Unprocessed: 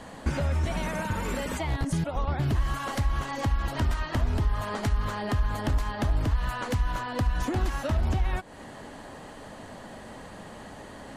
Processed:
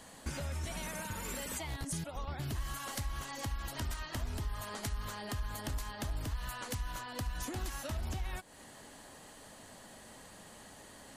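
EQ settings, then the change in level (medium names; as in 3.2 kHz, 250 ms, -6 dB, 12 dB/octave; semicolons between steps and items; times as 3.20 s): pre-emphasis filter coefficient 0.8; +1.5 dB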